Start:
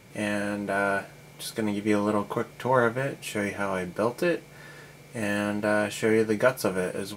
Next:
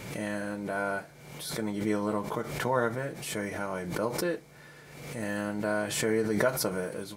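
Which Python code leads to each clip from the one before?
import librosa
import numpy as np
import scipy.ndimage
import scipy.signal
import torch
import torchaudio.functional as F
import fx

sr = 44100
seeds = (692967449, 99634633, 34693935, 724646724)

y = fx.dynamic_eq(x, sr, hz=2700.0, q=3.5, threshold_db=-53.0, ratio=4.0, max_db=-8)
y = fx.pre_swell(y, sr, db_per_s=50.0)
y = F.gain(torch.from_numpy(y), -5.5).numpy()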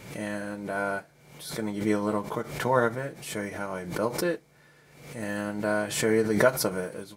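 y = fx.upward_expand(x, sr, threshold_db=-47.0, expansion=1.5)
y = F.gain(torch.from_numpy(y), 6.0).numpy()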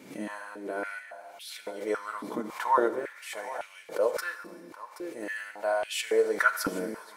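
y = x + 10.0 ** (-13.0 / 20.0) * np.pad(x, (int(777 * sr / 1000.0), 0))[:len(x)]
y = fx.rev_schroeder(y, sr, rt60_s=1.9, comb_ms=29, drr_db=11.5)
y = fx.filter_held_highpass(y, sr, hz=3.6, low_hz=260.0, high_hz=2700.0)
y = F.gain(torch.from_numpy(y), -6.5).numpy()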